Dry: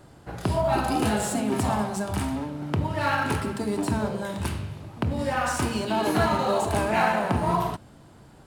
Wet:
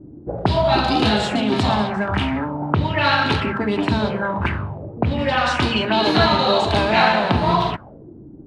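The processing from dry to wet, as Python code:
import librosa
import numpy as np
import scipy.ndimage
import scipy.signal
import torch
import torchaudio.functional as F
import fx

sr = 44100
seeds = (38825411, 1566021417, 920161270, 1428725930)

y = fx.envelope_lowpass(x, sr, base_hz=270.0, top_hz=3900.0, q=4.0, full_db=-22.0, direction='up')
y = y * 10.0 ** (6.0 / 20.0)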